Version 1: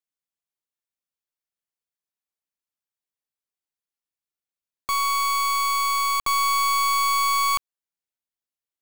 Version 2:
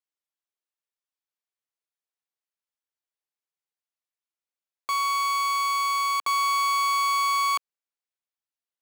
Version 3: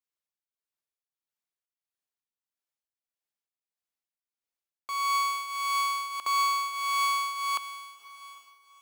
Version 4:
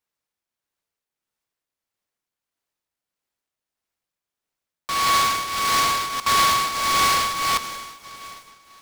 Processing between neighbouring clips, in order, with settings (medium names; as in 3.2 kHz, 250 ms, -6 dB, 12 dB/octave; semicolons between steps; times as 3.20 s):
high-pass 400 Hz 12 dB/octave; treble shelf 8.3 kHz -8.5 dB; trim -1.5 dB
echo that smears into a reverb 463 ms, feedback 47%, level -13.5 dB; tremolo triangle 1.6 Hz, depth 75%
delay time shaken by noise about 2.7 kHz, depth 0.071 ms; trim +8 dB